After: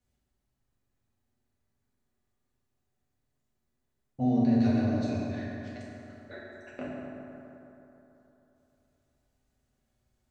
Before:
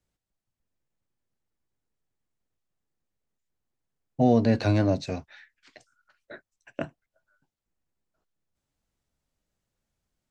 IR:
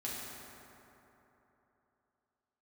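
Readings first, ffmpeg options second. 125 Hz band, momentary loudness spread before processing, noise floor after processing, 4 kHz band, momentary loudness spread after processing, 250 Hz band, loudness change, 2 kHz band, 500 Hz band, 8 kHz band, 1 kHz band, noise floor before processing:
−5.0 dB, 19 LU, −80 dBFS, −8.0 dB, 22 LU, −0.5 dB, −4.0 dB, −4.5 dB, −8.0 dB, can't be measured, −6.5 dB, below −85 dBFS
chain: -filter_complex "[0:a]lowshelf=frequency=130:gain=3.5,acompressor=threshold=-42dB:ratio=2[link_01];[1:a]atrim=start_sample=2205[link_02];[link_01][link_02]afir=irnorm=-1:irlink=0,volume=2dB"

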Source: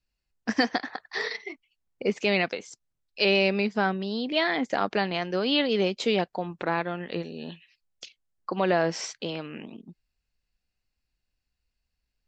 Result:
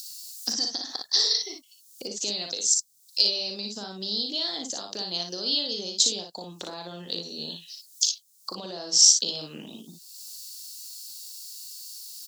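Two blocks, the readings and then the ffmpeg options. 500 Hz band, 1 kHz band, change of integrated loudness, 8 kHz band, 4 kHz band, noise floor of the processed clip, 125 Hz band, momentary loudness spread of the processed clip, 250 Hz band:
−12.0 dB, −13.0 dB, +2.5 dB, can't be measured, +8.0 dB, −58 dBFS, −11.0 dB, 17 LU, −11.0 dB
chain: -filter_complex "[0:a]highpass=frequency=130:poles=1,equalizer=frequency=2000:width=1:gain=-8.5,acrossover=split=600|1400[link_01][link_02][link_03];[link_03]acompressor=mode=upward:threshold=-49dB:ratio=2.5[link_04];[link_01][link_02][link_04]amix=inputs=3:normalize=0,alimiter=limit=-20dB:level=0:latency=1:release=193,acompressor=threshold=-37dB:ratio=6,aexciter=amount=14.5:drive=6.9:freq=3600,asplit=2[link_05][link_06];[link_06]aecho=0:1:39|58:0.376|0.562[link_07];[link_05][link_07]amix=inputs=2:normalize=0"

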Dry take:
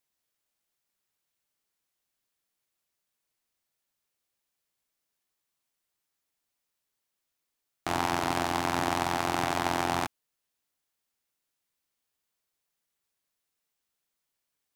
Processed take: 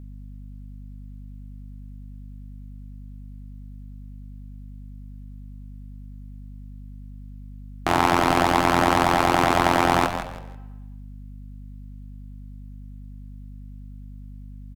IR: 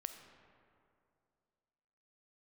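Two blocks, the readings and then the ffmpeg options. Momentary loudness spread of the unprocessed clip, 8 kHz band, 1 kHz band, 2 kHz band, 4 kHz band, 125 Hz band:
5 LU, +4.5 dB, +9.5 dB, +9.0 dB, +7.0 dB, +11.5 dB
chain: -filter_complex "[0:a]asplit=4[link_01][link_02][link_03][link_04];[link_02]adelay=162,afreqshift=-77,volume=-9dB[link_05];[link_03]adelay=324,afreqshift=-154,volume=-19.5dB[link_06];[link_04]adelay=486,afreqshift=-231,volume=-29.9dB[link_07];[link_01][link_05][link_06][link_07]amix=inputs=4:normalize=0,asplit=2[link_08][link_09];[1:a]atrim=start_sample=2205,asetrate=88200,aresample=44100,lowpass=4000[link_10];[link_09][link_10]afir=irnorm=-1:irlink=0,volume=5.5dB[link_11];[link_08][link_11]amix=inputs=2:normalize=0,aeval=exprs='val(0)+0.00708*(sin(2*PI*50*n/s)+sin(2*PI*2*50*n/s)/2+sin(2*PI*3*50*n/s)/3+sin(2*PI*4*50*n/s)/4+sin(2*PI*5*50*n/s)/5)':channel_layout=same,volume=5dB"

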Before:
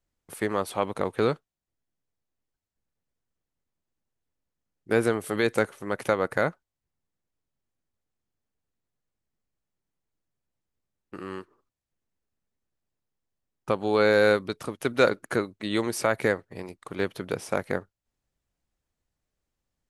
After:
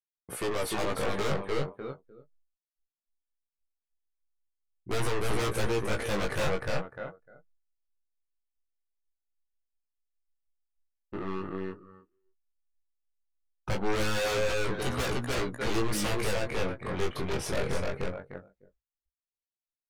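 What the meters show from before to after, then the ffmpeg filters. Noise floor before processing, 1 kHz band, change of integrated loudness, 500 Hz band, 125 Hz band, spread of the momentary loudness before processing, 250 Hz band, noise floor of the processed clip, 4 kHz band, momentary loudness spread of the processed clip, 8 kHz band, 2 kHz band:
below −85 dBFS, −3.5 dB, −5.5 dB, −5.5 dB, +2.5 dB, 16 LU, −4.0 dB, below −85 dBFS, +1.5 dB, 13 LU, +2.5 dB, −4.5 dB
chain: -filter_complex "[0:a]highshelf=frequency=4400:gain=-4.5,aecho=1:1:301|602|903:0.596|0.0953|0.0152,asplit=2[link_01][link_02];[link_02]aeval=exprs='0.447*sin(PI/2*8.91*val(0)/0.447)':channel_layout=same,volume=-8.5dB[link_03];[link_01][link_03]amix=inputs=2:normalize=0,afftdn=noise_reduction=19:noise_floor=-42,asoftclip=type=tanh:threshold=-18.5dB,agate=range=-33dB:threshold=-57dB:ratio=3:detection=peak,asubboost=boost=2.5:cutoff=110,asplit=2[link_04][link_05];[link_05]adelay=15,volume=-10dB[link_06];[link_04][link_06]amix=inputs=2:normalize=0,flanger=delay=16:depth=7.4:speed=0.2,volume=-5.5dB"

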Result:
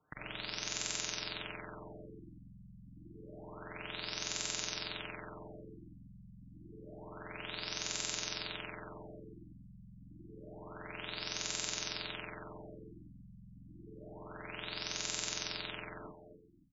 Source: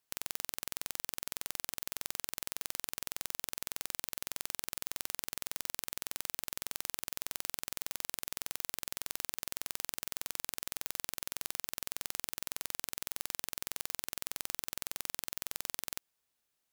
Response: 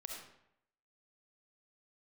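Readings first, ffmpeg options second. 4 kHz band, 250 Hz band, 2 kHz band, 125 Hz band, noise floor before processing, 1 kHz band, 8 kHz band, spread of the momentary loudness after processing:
+2.0 dB, +6.0 dB, +2.0 dB, +7.5 dB, −82 dBFS, +0.5 dB, −3.0 dB, 20 LU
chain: -filter_complex "[0:a]aemphasis=mode=production:type=50fm[link_01];[1:a]atrim=start_sample=2205,atrim=end_sample=6174[link_02];[link_01][link_02]afir=irnorm=-1:irlink=0,aeval=exprs='0.794*(cos(1*acos(clip(val(0)/0.794,-1,1)))-cos(1*PI/2))+0.00891*(cos(8*acos(clip(val(0)/0.794,-1,1)))-cos(8*PI/2))':channel_layout=same,alimiter=limit=-9dB:level=0:latency=1:release=289,aecho=1:1:265|530|795|1060|1325|1590|1855:0.355|0.209|0.124|0.0729|0.043|0.0254|0.015,acrossover=split=350[link_03][link_04];[link_04]acompressor=threshold=-38dB:ratio=2[link_05];[link_03][link_05]amix=inputs=2:normalize=0,highpass=49,lowshelf=frequency=390:gain=8.5,aecho=1:1:6.6:0.43,afftfilt=real='re*lt(b*sr/1024,240*pow(7600/240,0.5+0.5*sin(2*PI*0.28*pts/sr)))':imag='im*lt(b*sr/1024,240*pow(7600/240,0.5+0.5*sin(2*PI*0.28*pts/sr)))':win_size=1024:overlap=0.75,volume=17dB"

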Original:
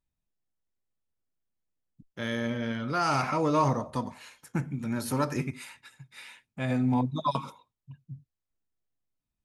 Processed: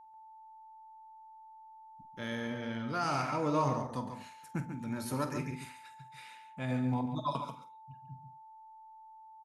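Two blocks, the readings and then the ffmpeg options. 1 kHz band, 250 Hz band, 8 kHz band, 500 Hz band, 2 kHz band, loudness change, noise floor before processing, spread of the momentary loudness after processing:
−5.0 dB, −6.0 dB, −6.0 dB, −5.5 dB, −5.5 dB, −6.0 dB, below −85 dBFS, 22 LU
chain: -filter_complex "[0:a]aeval=exprs='val(0)+0.00501*sin(2*PI*880*n/s)':channel_layout=same,asplit=2[link_01][link_02];[link_02]adelay=47,volume=-12.5dB[link_03];[link_01][link_03]amix=inputs=2:normalize=0,asplit=2[link_04][link_05];[link_05]adelay=139.9,volume=-8dB,highshelf=frequency=4000:gain=-3.15[link_06];[link_04][link_06]amix=inputs=2:normalize=0,volume=-6.5dB"

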